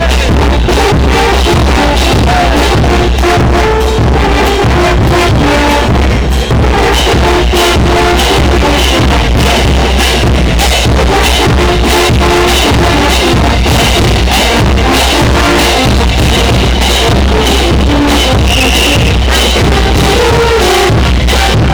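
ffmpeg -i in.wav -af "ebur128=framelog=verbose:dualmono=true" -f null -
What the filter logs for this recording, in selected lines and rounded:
Integrated loudness:
  I:          -4.7 LUFS
  Threshold: -14.7 LUFS
Loudness range:
  LRA:         0.8 LU
  Threshold: -24.7 LUFS
  LRA low:    -5.1 LUFS
  LRA high:   -4.3 LUFS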